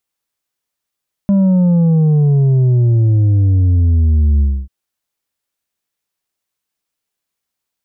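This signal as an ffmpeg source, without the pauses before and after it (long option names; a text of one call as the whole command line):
ffmpeg -f lavfi -i "aevalsrc='0.355*clip((3.39-t)/0.27,0,1)*tanh(1.78*sin(2*PI*200*3.39/log(65/200)*(exp(log(65/200)*t/3.39)-1)))/tanh(1.78)':duration=3.39:sample_rate=44100" out.wav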